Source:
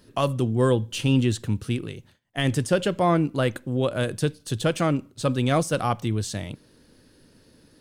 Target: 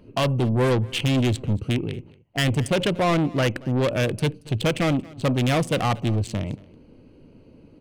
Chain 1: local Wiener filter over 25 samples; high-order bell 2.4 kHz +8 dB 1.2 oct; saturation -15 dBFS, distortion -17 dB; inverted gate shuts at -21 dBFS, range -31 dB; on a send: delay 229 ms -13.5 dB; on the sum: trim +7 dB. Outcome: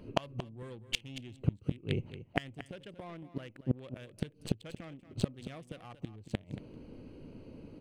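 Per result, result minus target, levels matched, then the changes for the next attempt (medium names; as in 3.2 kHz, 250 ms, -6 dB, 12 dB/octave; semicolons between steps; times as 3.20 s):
echo-to-direct +9 dB; saturation: distortion -9 dB
change: delay 229 ms -22.5 dB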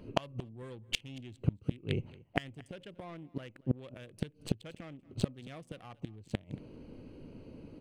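saturation: distortion -9 dB
change: saturation -24 dBFS, distortion -8 dB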